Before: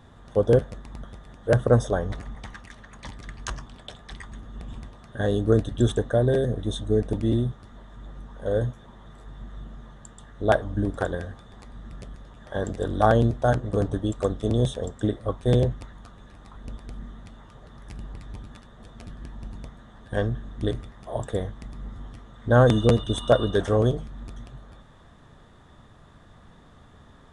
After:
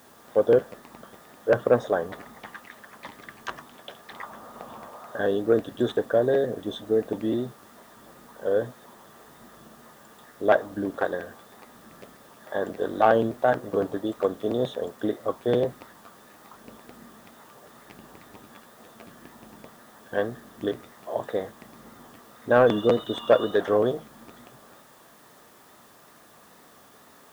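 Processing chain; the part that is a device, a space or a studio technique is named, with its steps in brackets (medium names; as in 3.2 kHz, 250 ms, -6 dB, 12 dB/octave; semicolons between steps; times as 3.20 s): tape answering machine (band-pass 310–2900 Hz; saturation -9 dBFS, distortion -22 dB; wow and flutter; white noise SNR 30 dB); 4.13–5.19 s: high-order bell 820 Hz +9 dB; trim +2.5 dB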